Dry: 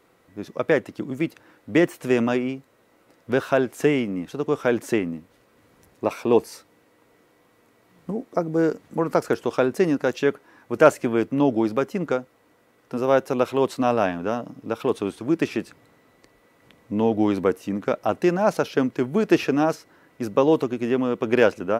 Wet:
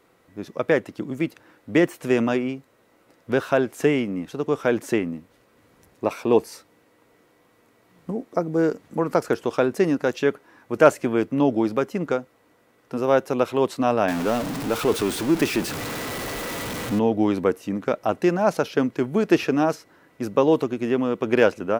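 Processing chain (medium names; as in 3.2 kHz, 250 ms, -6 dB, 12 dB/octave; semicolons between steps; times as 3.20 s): 14.08–16.99 s: jump at every zero crossing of -24.5 dBFS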